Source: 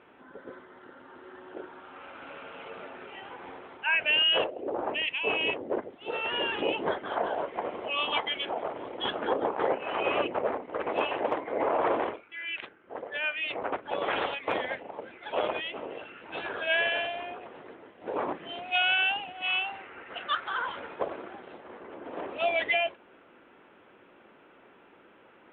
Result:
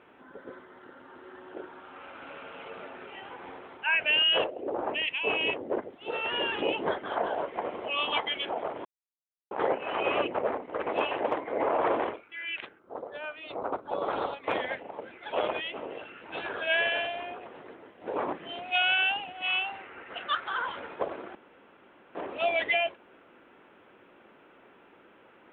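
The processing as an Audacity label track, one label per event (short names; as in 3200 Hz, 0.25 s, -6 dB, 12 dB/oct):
8.850000	9.510000	mute
12.790000	14.440000	band shelf 2300 Hz -13 dB 1.2 oct
21.350000	22.150000	room tone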